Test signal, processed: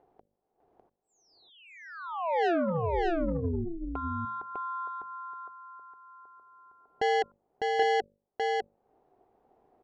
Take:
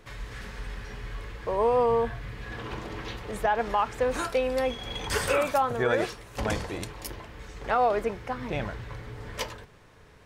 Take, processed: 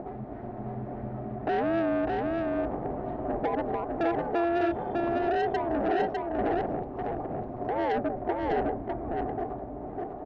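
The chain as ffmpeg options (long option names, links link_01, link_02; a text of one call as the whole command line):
ffmpeg -i in.wav -filter_complex "[0:a]lowshelf=frequency=350:gain=-3.5,bandreject=frequency=50:width_type=h:width=6,bandreject=frequency=100:width_type=h:width=6,bandreject=frequency=150:width_type=h:width=6,bandreject=frequency=200:width_type=h:width=6,bandreject=frequency=250:width_type=h:width=6,bandreject=frequency=300:width_type=h:width=6,bandreject=frequency=350:width_type=h:width=6,bandreject=frequency=400:width_type=h:width=6,alimiter=level_in=0.5dB:limit=-24dB:level=0:latency=1:release=123,volume=-0.5dB,acompressor=mode=upward:threshold=-37dB:ratio=2.5,lowpass=frequency=580:width_type=q:width=4.9,aresample=16000,asoftclip=type=tanh:threshold=-26.5dB,aresample=44100,aeval=exprs='val(0)*sin(2*PI*170*n/s)':channel_layout=same,asplit=2[link_01][link_02];[link_02]aecho=0:1:602:0.708[link_03];[link_01][link_03]amix=inputs=2:normalize=0,volume=5dB" out.wav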